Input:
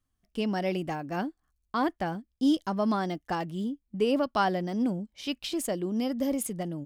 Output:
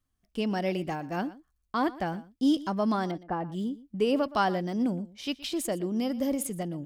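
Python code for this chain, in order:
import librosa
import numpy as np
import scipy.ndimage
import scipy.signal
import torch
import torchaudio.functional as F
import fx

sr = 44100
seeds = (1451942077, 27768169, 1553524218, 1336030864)

y = fx.lowpass(x, sr, hz=1300.0, slope=12, at=(3.11, 3.52))
y = y + 10.0 ** (-18.5 / 20.0) * np.pad(y, (int(119 * sr / 1000.0), 0))[:len(y)]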